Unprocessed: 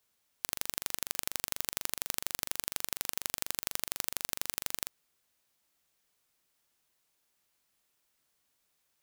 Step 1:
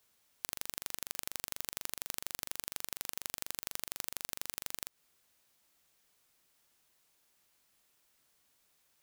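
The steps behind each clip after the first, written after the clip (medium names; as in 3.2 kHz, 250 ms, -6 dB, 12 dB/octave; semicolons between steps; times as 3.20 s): compression 5:1, threshold -36 dBFS, peak gain reduction 9.5 dB; trim +4 dB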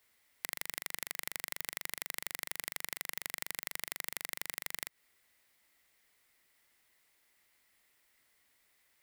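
graphic EQ with 31 bands 160 Hz -7 dB, 2 kHz +12 dB, 6.3 kHz -4 dB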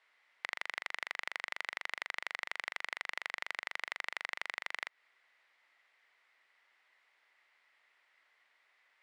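band-pass 740–2500 Hz; trim +7 dB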